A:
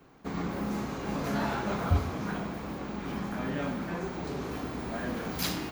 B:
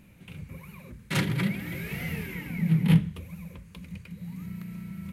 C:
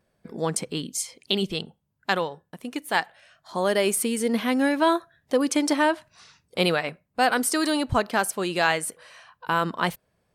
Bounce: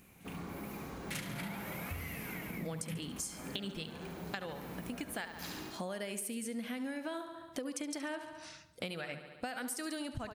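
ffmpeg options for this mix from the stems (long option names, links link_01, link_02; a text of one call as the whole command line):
ffmpeg -i stem1.wav -i stem2.wav -i stem3.wav -filter_complex "[0:a]volume=-10dB,asplit=2[link_01][link_02];[link_02]volume=-5.5dB[link_03];[1:a]bass=frequency=250:gain=-8,treble=frequency=4000:gain=6,volume=-2dB,asplit=2[link_04][link_05];[link_05]volume=-13dB[link_06];[2:a]adelay=2250,volume=2dB,asplit=2[link_07][link_08];[link_08]volume=-20dB[link_09];[link_04][link_07]amix=inputs=2:normalize=0,equalizer=frequency=400:width_type=o:width=0.67:gain=-8,equalizer=frequency=1000:width_type=o:width=0.67:gain=-10,equalizer=frequency=4000:width_type=o:width=0.67:gain=-4,acompressor=threshold=-25dB:ratio=6,volume=0dB[link_10];[link_03][link_06][link_09]amix=inputs=3:normalize=0,aecho=0:1:70|140|210|280|350|420|490|560|630:1|0.57|0.325|0.185|0.106|0.0602|0.0343|0.0195|0.0111[link_11];[link_01][link_10][link_11]amix=inputs=3:normalize=0,acompressor=threshold=-39dB:ratio=4" out.wav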